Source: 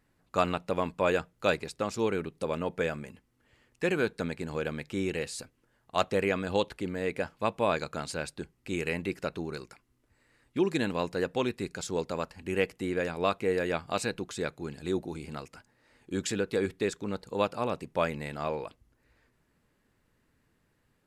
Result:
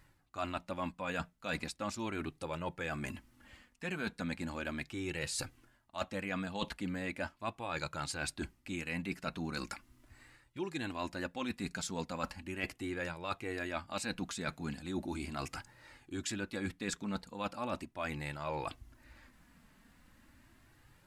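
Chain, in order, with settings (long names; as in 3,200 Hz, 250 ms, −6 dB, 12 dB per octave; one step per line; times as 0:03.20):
parametric band 440 Hz −14.5 dB 0.42 octaves
reversed playback
downward compressor 10 to 1, threshold −44 dBFS, peak gain reduction 22.5 dB
reversed playback
flanger 0.38 Hz, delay 2 ms, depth 2.6 ms, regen −31%
level +13 dB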